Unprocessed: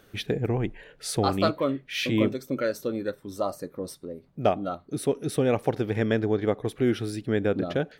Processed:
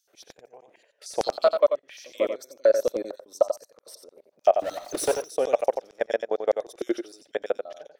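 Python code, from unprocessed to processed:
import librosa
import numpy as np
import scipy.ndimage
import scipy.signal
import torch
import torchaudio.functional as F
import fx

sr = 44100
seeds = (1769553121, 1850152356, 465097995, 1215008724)

y = fx.recorder_agc(x, sr, target_db=-16.5, rise_db_per_s=7.9, max_gain_db=30)
y = fx.low_shelf(y, sr, hz=450.0, db=11.5, at=(2.65, 3.27))
y = fx.level_steps(y, sr, step_db=23)
y = fx.filter_lfo_highpass(y, sr, shape='square', hz=6.6, low_hz=600.0, high_hz=5700.0, q=3.9)
y = fx.power_curve(y, sr, exponent=0.5, at=(4.59, 5.22))
y = fx.small_body(y, sr, hz=(350.0, 3600.0), ring_ms=45, db=12, at=(6.54, 7.22))
y = y + 10.0 ** (-7.5 / 20.0) * np.pad(y, (int(89 * sr / 1000.0), 0))[:len(y)]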